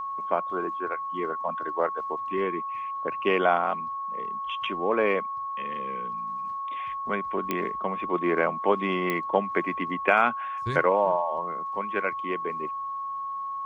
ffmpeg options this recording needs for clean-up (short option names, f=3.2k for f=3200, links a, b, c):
-af "adeclick=t=4,bandreject=f=1.1k:w=30"